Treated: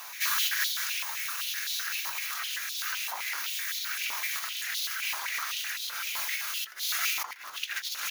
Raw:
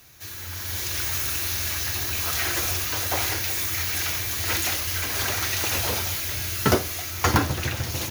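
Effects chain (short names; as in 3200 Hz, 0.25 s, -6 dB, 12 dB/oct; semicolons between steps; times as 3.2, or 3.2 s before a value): octaver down 2 oct, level -1 dB; negative-ratio compressor -35 dBFS, ratio -1; stepped high-pass 7.8 Hz 960–3700 Hz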